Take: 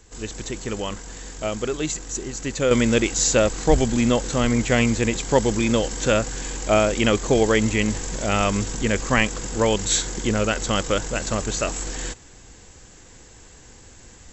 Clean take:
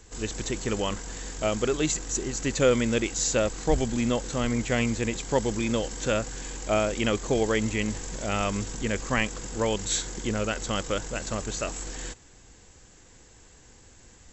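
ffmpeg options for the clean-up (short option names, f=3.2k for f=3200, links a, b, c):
-af "asetnsamples=n=441:p=0,asendcmd='2.71 volume volume -6.5dB',volume=0dB"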